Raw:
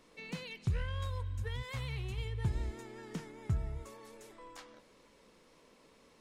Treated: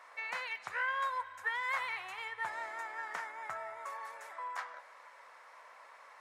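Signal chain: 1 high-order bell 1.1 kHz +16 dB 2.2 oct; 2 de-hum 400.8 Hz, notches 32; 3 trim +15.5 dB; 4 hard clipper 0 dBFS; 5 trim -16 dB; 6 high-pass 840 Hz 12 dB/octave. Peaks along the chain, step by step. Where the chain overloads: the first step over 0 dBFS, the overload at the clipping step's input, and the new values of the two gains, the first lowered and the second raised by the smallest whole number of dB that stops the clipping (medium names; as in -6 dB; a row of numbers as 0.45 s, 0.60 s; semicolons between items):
-18.5 dBFS, -18.5 dBFS, -3.0 dBFS, -3.0 dBFS, -19.0 dBFS, -23.5 dBFS; nothing clips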